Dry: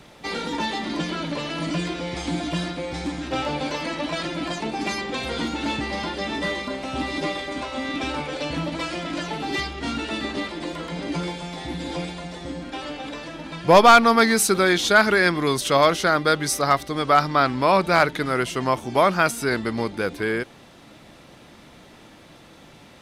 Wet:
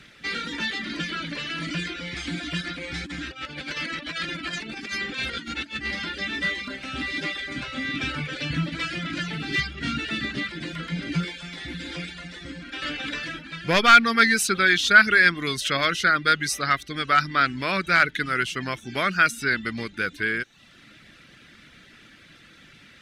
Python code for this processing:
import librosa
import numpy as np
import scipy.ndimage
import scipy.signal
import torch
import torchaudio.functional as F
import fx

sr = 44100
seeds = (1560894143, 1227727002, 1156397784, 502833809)

y = fx.over_compress(x, sr, threshold_db=-29.0, ratio=-0.5, at=(2.61, 5.91))
y = fx.peak_eq(y, sr, hz=130.0, db=11.5, octaves=1.2, at=(7.5, 11.25))
y = fx.edit(y, sr, fx.clip_gain(start_s=12.82, length_s=0.57, db=5.5), tone=tone)
y = fx.lowpass(y, sr, hz=2400.0, slope=6)
y = fx.dereverb_blind(y, sr, rt60_s=0.51)
y = fx.curve_eq(y, sr, hz=(230.0, 930.0, 1500.0), db=(0, -11, 10))
y = y * 10.0 ** (-3.5 / 20.0)